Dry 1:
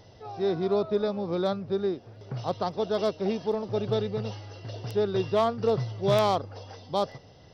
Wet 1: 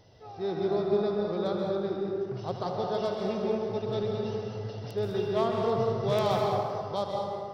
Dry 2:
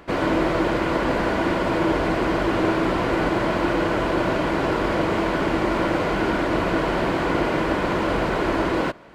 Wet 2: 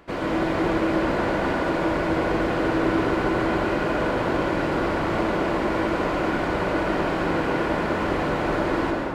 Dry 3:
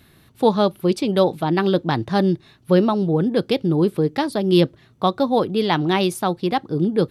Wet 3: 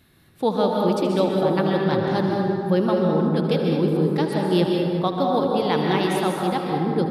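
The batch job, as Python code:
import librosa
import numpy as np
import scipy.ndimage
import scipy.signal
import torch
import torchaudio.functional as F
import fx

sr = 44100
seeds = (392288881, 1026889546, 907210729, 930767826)

p1 = x + fx.echo_multitap(x, sr, ms=(77, 205), db=(-13.0, -12.0), dry=0)
p2 = fx.rev_plate(p1, sr, seeds[0], rt60_s=2.3, hf_ratio=0.4, predelay_ms=115, drr_db=-0.5)
y = p2 * 10.0 ** (-5.5 / 20.0)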